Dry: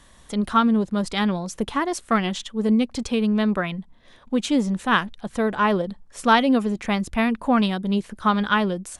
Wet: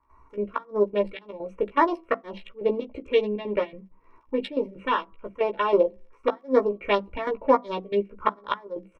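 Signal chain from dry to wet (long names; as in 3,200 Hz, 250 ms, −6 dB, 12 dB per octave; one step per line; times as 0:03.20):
adaptive Wiener filter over 25 samples
parametric band 200 Hz −12 dB 1.7 octaves
0:03.22–0:05.73: downward compressor 8 to 1, threshold −25 dBFS, peak gain reduction 11.5 dB
phaser swept by the level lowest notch 510 Hz, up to 2,700 Hz, full sweep at −22.5 dBFS
gate with flip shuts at −16 dBFS, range −31 dB
gate pattern ".xx.x.xxx" 161 BPM −12 dB
surface crackle 17 per second −60 dBFS
high-frequency loss of the air 82 metres
double-tracking delay 15 ms −5 dB
convolution reverb RT60 0.40 s, pre-delay 3 ms, DRR 17.5 dB
level +1.5 dB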